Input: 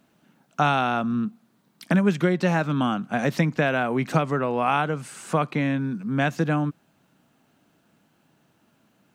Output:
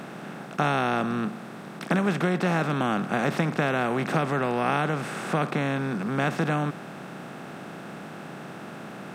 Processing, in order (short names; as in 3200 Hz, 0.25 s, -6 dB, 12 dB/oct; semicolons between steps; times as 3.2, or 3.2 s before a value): per-bin compression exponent 0.4; gain -7.5 dB